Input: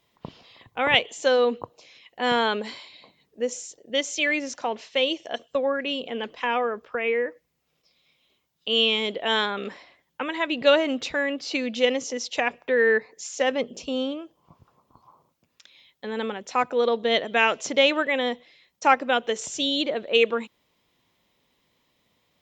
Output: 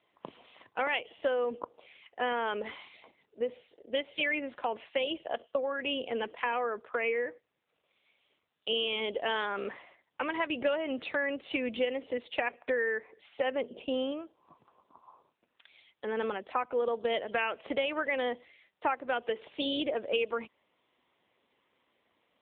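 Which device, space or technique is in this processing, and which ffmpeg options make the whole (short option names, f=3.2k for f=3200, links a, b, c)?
voicemail: -af "highpass=300,lowpass=3k,acompressor=threshold=-26dB:ratio=8" -ar 8000 -c:a libopencore_amrnb -b:a 7950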